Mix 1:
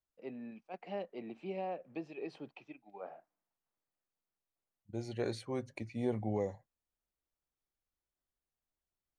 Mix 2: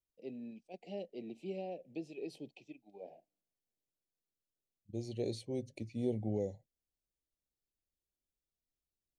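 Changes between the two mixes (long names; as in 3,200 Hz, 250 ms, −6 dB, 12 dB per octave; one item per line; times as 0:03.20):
first voice: remove high-frequency loss of the air 110 metres
master: add Butterworth band-reject 1,300 Hz, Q 0.55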